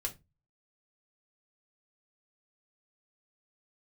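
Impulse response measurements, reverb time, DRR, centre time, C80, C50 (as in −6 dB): 0.20 s, 0.0 dB, 8 ms, 26.0 dB, 17.5 dB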